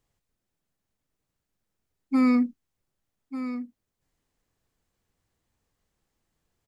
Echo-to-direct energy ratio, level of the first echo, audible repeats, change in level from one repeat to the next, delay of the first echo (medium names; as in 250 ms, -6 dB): -11.5 dB, -11.5 dB, 1, no regular repeats, 1194 ms